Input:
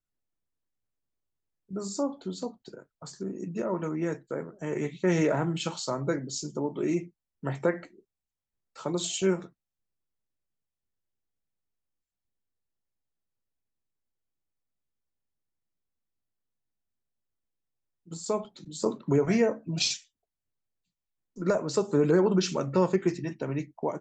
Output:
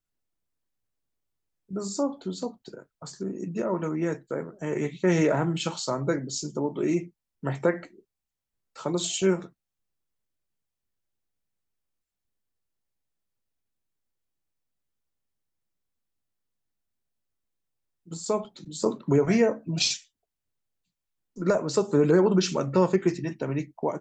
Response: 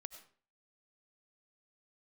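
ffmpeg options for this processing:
-af "volume=1.33"

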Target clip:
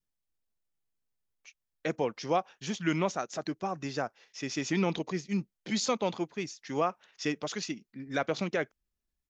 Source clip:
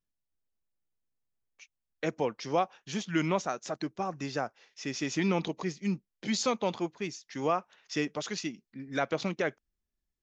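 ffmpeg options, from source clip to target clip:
-af "adynamicequalizer=threshold=0.00398:dfrequency=1000:dqfactor=3:tfrequency=1000:tqfactor=3:attack=5:release=100:ratio=0.375:range=1.5:mode=cutabove:tftype=bell,atempo=1.1"

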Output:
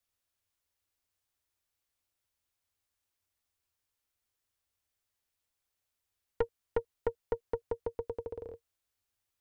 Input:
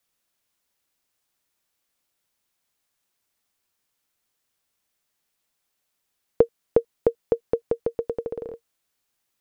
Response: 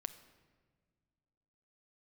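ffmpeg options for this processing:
-af "lowshelf=f=120:t=q:w=3:g=6.5,aeval=exprs='(tanh(6.31*val(0)+0.55)-tanh(0.55))/6.31':c=same,volume=0.501"

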